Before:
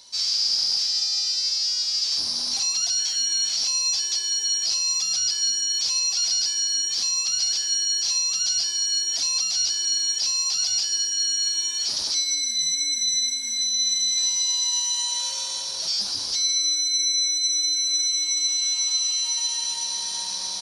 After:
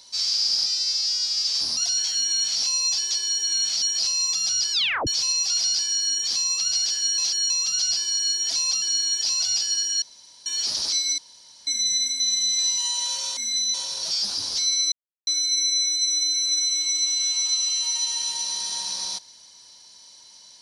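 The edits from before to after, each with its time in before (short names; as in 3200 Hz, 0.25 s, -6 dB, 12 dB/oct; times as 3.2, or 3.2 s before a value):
0.66–1.23 cut
2.34–2.78 cut
3.28–3.62 copy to 4.49
5.39 tape stop 0.35 s
7.85–8.17 reverse
9.49–9.79 cut
10.37–10.62 cut
11.24–11.68 room tone
12.4–12.89 room tone
13.42–13.79 move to 15.51
14.37–14.92 cut
16.69 insert silence 0.35 s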